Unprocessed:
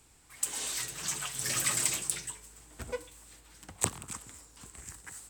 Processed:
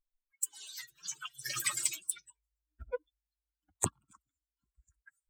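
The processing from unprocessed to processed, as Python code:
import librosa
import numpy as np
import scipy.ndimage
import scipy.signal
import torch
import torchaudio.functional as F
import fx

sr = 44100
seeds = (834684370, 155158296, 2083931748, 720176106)

y = fx.bin_expand(x, sr, power=3.0)
y = y * librosa.db_to_amplitude(2.5)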